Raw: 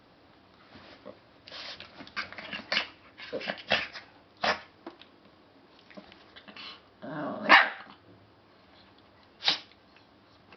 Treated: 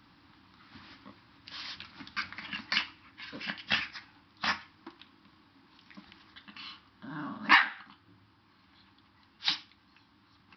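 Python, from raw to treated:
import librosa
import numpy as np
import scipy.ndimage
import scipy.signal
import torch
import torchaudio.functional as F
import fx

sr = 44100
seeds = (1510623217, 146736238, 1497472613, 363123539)

p1 = fx.rider(x, sr, range_db=4, speed_s=0.5)
p2 = x + (p1 * librosa.db_to_amplitude(-2.0))
p3 = fx.band_shelf(p2, sr, hz=530.0, db=-15.0, octaves=1.1)
y = p3 * librosa.db_to_amplitude(-7.0)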